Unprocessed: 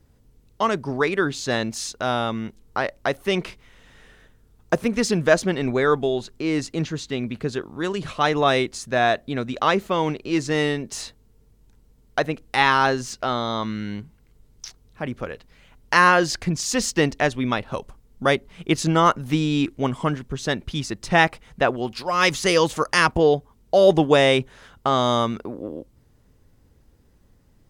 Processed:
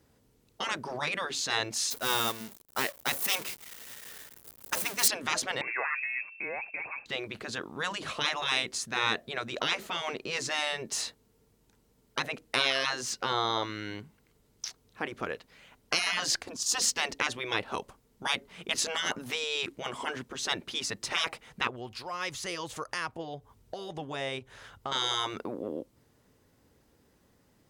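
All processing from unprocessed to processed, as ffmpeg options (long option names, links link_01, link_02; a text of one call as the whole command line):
ffmpeg -i in.wav -filter_complex "[0:a]asettb=1/sr,asplit=3[link_01][link_02][link_03];[link_01]atrim=end=1.904[link_04];[link_02]atrim=start=1.9:end=5.08,asetpts=PTS-STARTPTS,afade=type=in:duration=0.004:curve=qsin,afade=type=out:start_time=3.176:duration=0.004:curve=qsin,aeval=exprs='val(0)+0.5*0.0447*sgn(val(0))':channel_layout=same,aemphasis=mode=production:type=50kf,agate=range=-33dB:threshold=-17dB:ratio=3:release=100:detection=peak[link_05];[link_03]atrim=start=5.076[link_06];[link_04][link_05]acrossfade=duration=0.004:curve1=hsin:curve2=qsin[link_07];[link_07][link_06]acrossfade=duration=0.004:curve1=qsin:curve2=hsin,asettb=1/sr,asplit=3[link_08][link_09][link_10];[link_08]atrim=end=5.614[link_11];[link_09]atrim=start=5.61:end=7.06,asetpts=PTS-STARTPTS,afade=type=in:duration=0.004:curve=qsin,afade=type=out:start_time=1.446:duration=0.004:curve=qsin,bandreject=frequency=1400:width=11,lowpass=frequency=2300:width_type=q:width=0.5098,lowpass=frequency=2300:width_type=q:width=0.6013,lowpass=frequency=2300:width_type=q:width=0.9,lowpass=frequency=2300:width_type=q:width=2.563,afreqshift=-2700[link_12];[link_10]atrim=start=7.056[link_13];[link_11][link_12]acrossfade=duration=0.004:curve1=hsin:curve2=qsin[link_14];[link_14][link_13]acrossfade=duration=0.004:curve1=qsin:curve2=hsin,asettb=1/sr,asplit=3[link_15][link_16][link_17];[link_15]atrim=end=16.424[link_18];[link_16]atrim=start=16.42:end=16.82,asetpts=PTS-STARTPTS,afade=type=in:duration=0.004:curve=qsin,afade=type=out:start_time=0.396:duration=0.004:curve=qsin,bandreject=frequency=111.4:width_type=h:width=4,bandreject=frequency=222.8:width_type=h:width=4,agate=range=-8dB:threshold=-28dB:ratio=16:release=100:detection=peak,equalizer=frequency=2100:width_type=o:width=0.59:gain=-11.5[link_19];[link_17]atrim=start=16.816[link_20];[link_18][link_19]acrossfade=duration=0.004:curve1=hsin:curve2=qsin[link_21];[link_21][link_20]acrossfade=duration=0.004:curve1=qsin:curve2=hsin,asettb=1/sr,asplit=3[link_22][link_23][link_24];[link_22]atrim=end=21.674[link_25];[link_23]atrim=start=21.67:end=24.92,asetpts=PTS-STARTPTS,afade=type=in:duration=0.004:curve=qsin,afade=type=out:start_time=3.246:duration=0.004:curve=qsin,lowshelf=frequency=140:width_type=q:width=1.5:gain=9,acompressor=threshold=-42dB:ratio=2:attack=3.2:release=140:knee=1:detection=peak[link_26];[link_24]atrim=start=24.916[link_27];[link_25][link_26]acrossfade=duration=0.004:curve1=hsin:curve2=qsin[link_28];[link_28][link_27]acrossfade=duration=0.004:curve1=qsin:curve2=hsin,afftfilt=real='re*lt(hypot(re,im),0.224)':imag='im*lt(hypot(re,im),0.224)':win_size=1024:overlap=0.75,highpass=frequency=300:poles=1" out.wav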